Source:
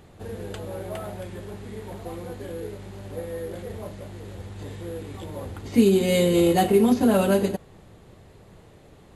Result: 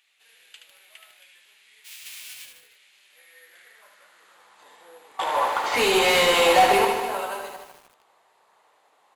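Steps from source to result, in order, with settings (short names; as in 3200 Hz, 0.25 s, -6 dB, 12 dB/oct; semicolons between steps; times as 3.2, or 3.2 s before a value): 1.84–2.44 spectral whitening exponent 0.1; high-pass sweep 2500 Hz -> 910 Hz, 3.07–4.76; 5.19–6.85 overdrive pedal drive 33 dB, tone 2600 Hz, clips at -1.5 dBFS; early reflections 16 ms -12 dB, 74 ms -5.5 dB; lo-fi delay 0.152 s, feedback 55%, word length 6-bit, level -8 dB; gain -8 dB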